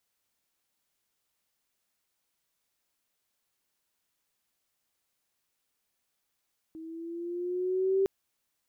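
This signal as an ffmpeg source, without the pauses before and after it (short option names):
-f lavfi -i "aevalsrc='pow(10,(-21.5+19*(t/1.31-1))/20)*sin(2*PI*319*1.31/(3.5*log(2)/12)*(exp(3.5*log(2)/12*t/1.31)-1))':d=1.31:s=44100"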